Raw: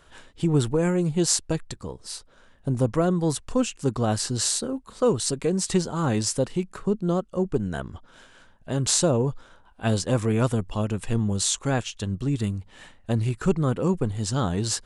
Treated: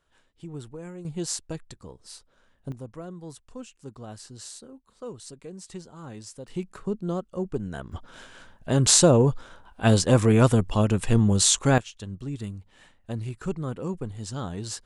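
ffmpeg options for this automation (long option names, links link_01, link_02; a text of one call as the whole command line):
ffmpeg -i in.wav -af "asetnsamples=nb_out_samples=441:pad=0,asendcmd='1.05 volume volume -8.5dB;2.72 volume volume -17dB;6.48 volume volume -5dB;7.92 volume volume 4.5dB;11.78 volume volume -8dB',volume=-17dB" out.wav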